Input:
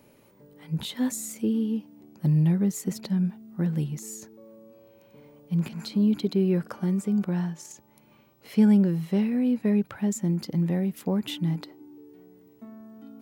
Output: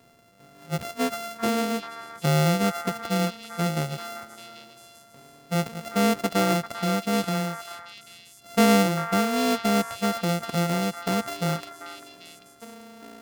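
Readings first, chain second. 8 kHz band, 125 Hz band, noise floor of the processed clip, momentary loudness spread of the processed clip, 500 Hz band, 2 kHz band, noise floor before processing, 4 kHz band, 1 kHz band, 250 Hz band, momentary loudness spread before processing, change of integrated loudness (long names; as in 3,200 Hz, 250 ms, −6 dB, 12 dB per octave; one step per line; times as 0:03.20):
+4.5 dB, −1.5 dB, −53 dBFS, 19 LU, +6.0 dB, +14.0 dB, −58 dBFS, +9.0 dB, +18.0 dB, −2.0 dB, 12 LU, +1.0 dB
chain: samples sorted by size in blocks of 64 samples
echo through a band-pass that steps 394 ms, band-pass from 1,300 Hz, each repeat 1.4 octaves, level −5 dB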